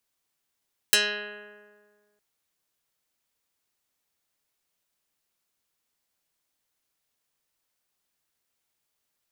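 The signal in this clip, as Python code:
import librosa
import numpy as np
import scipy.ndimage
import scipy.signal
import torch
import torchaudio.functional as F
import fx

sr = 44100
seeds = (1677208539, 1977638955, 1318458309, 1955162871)

y = fx.pluck(sr, length_s=1.26, note=56, decay_s=1.79, pick=0.18, brightness='dark')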